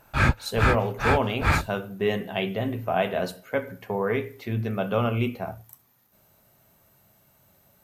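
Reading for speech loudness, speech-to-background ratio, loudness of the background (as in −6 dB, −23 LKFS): −28.0 LKFS, −2.5 dB, −25.5 LKFS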